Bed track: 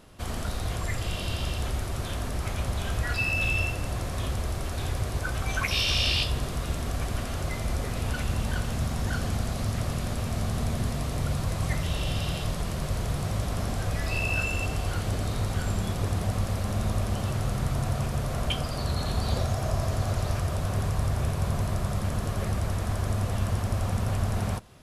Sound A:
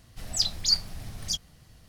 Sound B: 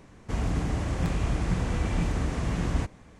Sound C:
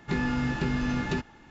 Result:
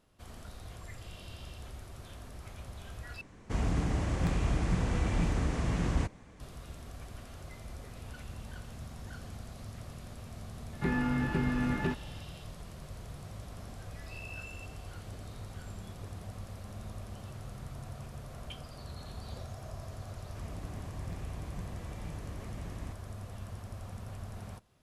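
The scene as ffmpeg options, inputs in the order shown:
ffmpeg -i bed.wav -i cue0.wav -i cue1.wav -i cue2.wav -filter_complex "[2:a]asplit=2[link_01][link_02];[0:a]volume=-16dB[link_03];[link_01]volume=18dB,asoftclip=hard,volume=-18dB[link_04];[3:a]acrossover=split=2800[link_05][link_06];[link_06]acompressor=threshold=-56dB:ratio=4:attack=1:release=60[link_07];[link_05][link_07]amix=inputs=2:normalize=0[link_08];[link_02]asuperstop=centerf=1400:order=4:qfactor=5[link_09];[link_03]asplit=2[link_10][link_11];[link_10]atrim=end=3.214[link_12];[link_04]atrim=end=3.19,asetpts=PTS-STARTPTS,volume=-2.5dB[link_13];[link_11]atrim=start=6.396[link_14];[link_08]atrim=end=1.5,asetpts=PTS-STARTPTS,volume=-2.5dB,afade=type=in:duration=0.004:curve=hsin,afade=type=out:start_time=1.496:duration=0.004:curve=hsin,adelay=10730[link_15];[link_09]atrim=end=3.19,asetpts=PTS-STARTPTS,volume=-16.5dB,afade=type=in:duration=0.004:curve=hsin,afade=type=out:start_time=3.186:duration=0.004:curve=hsin,adelay=20070[link_16];[link_12][link_13]acrossfade=duration=0.004:curve1=hsin:curve2=hsin[link_17];[link_17][link_14]acrossfade=duration=0.004:curve1=hsin:curve2=hsin[link_18];[link_18][link_15][link_16]amix=inputs=3:normalize=0" out.wav

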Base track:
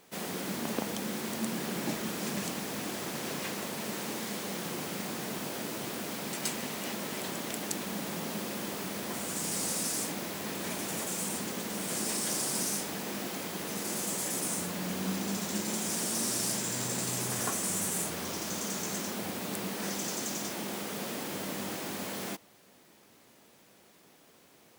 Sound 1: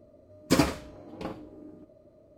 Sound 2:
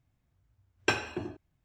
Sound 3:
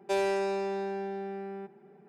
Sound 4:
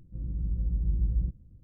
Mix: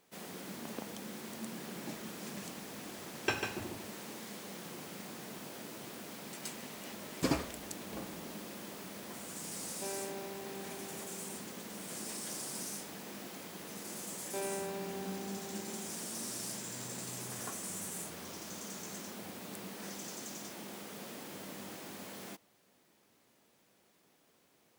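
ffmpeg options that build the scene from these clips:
ffmpeg -i bed.wav -i cue0.wav -i cue1.wav -i cue2.wav -filter_complex "[3:a]asplit=2[link_01][link_02];[0:a]volume=-9.5dB[link_03];[2:a]aecho=1:1:146:0.501,atrim=end=1.64,asetpts=PTS-STARTPTS,volume=-6dB,afade=type=in:duration=0.004:curve=hsin,afade=type=out:start_time=1.636:duration=0.004:curve=hsin,adelay=2400[link_04];[1:a]atrim=end=2.37,asetpts=PTS-STARTPTS,volume=-9dB,afade=type=in:duration=0.004:curve=hsin,afade=type=out:start_time=2.366:duration=0.004:curve=hsin,adelay=6720[link_05];[link_01]atrim=end=2.08,asetpts=PTS-STARTPTS,volume=-14.5dB,afade=type=in:duration=0.004:curve=hsin,afade=type=out:start_time=2.076:duration=0.004:curve=hsin,adelay=9720[link_06];[link_02]atrim=end=2.08,asetpts=PTS-STARTPTS,volume=-11dB,afade=type=in:duration=0.004:curve=hsin,afade=type=out:start_time=2.076:duration=0.004:curve=hsin,adelay=14240[link_07];[link_03][link_04][link_05][link_06][link_07]amix=inputs=5:normalize=0" out.wav

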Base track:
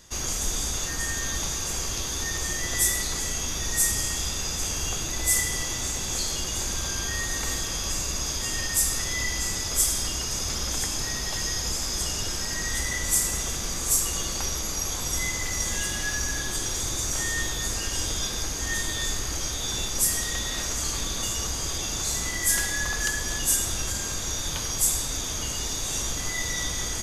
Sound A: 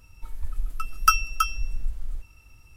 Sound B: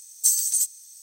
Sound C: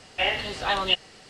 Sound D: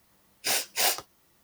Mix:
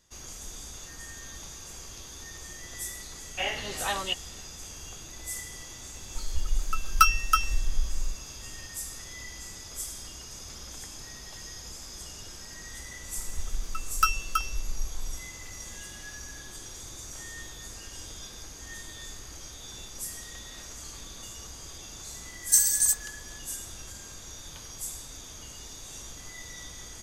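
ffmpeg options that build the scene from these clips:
ffmpeg -i bed.wav -i cue0.wav -i cue1.wav -i cue2.wav -filter_complex "[1:a]asplit=2[link_01][link_02];[0:a]volume=-14dB[link_03];[3:a]dynaudnorm=framelen=110:gausssize=3:maxgain=14.5dB[link_04];[link_01]acontrast=67[link_05];[link_02]acontrast=35[link_06];[2:a]agate=range=-33dB:threshold=-33dB:ratio=3:release=100:detection=peak[link_07];[link_04]atrim=end=1.29,asetpts=PTS-STARTPTS,volume=-15.5dB,afade=type=in:duration=0.004:curve=hsin,afade=type=out:start_time=1.286:duration=0.004:curve=hsin,adelay=3190[link_08];[link_05]atrim=end=2.76,asetpts=PTS-STARTPTS,volume=-5dB,afade=type=in:duration=0.004:curve=hsin,afade=type=out:start_time=2.756:duration=0.004:curve=hsin,adelay=261513S[link_09];[link_06]atrim=end=2.76,asetpts=PTS-STARTPTS,volume=-9dB,afade=type=in:duration=0.004:curve=hsin,afade=type=out:start_time=2.756:duration=0.004:curve=hsin,adelay=12950[link_10];[link_07]atrim=end=1.02,asetpts=PTS-STARTPTS,volume=-0.5dB,afade=type=in:duration=0.004:curve=hsin,afade=type=out:start_time=1.016:duration=0.004:curve=hsin,adelay=982548S[link_11];[link_03][link_08][link_09][link_10][link_11]amix=inputs=5:normalize=0" out.wav

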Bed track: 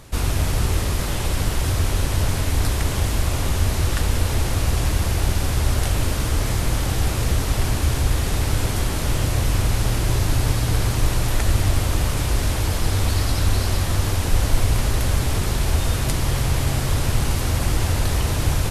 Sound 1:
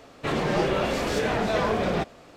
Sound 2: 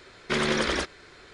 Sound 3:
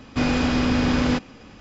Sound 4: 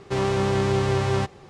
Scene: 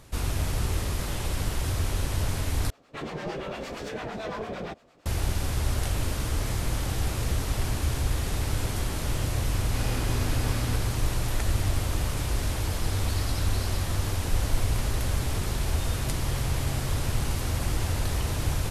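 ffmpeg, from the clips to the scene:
ffmpeg -i bed.wav -i cue0.wav -i cue1.wav -i cue2.wav -filter_complex "[0:a]volume=-7dB[link_01];[1:a]acrossover=split=730[link_02][link_03];[link_02]aeval=exprs='val(0)*(1-0.7/2+0.7/2*cos(2*PI*8.8*n/s))':channel_layout=same[link_04];[link_03]aeval=exprs='val(0)*(1-0.7/2-0.7/2*cos(2*PI*8.8*n/s))':channel_layout=same[link_05];[link_04][link_05]amix=inputs=2:normalize=0[link_06];[3:a]highpass=310[link_07];[link_01]asplit=2[link_08][link_09];[link_08]atrim=end=2.704[link_10];[link_06]atrim=end=2.36,asetpts=PTS-STARTPTS,volume=-6.5dB[link_11];[link_09]atrim=start=5.056[link_12];[link_07]atrim=end=1.6,asetpts=PTS-STARTPTS,volume=-12.5dB,afade=type=in:duration=0.004:curve=hsin,afade=type=out:start_time=1.596:duration=0.004:curve=hsin,adelay=9580[link_13];[link_10][link_11]acrossfade=duration=0.004:curve1=hsin:curve2=hsin[link_14];[link_14][link_12]acrossfade=duration=0.004:curve1=hsin:curve2=hsin[link_15];[link_15][link_13]amix=inputs=2:normalize=0" out.wav

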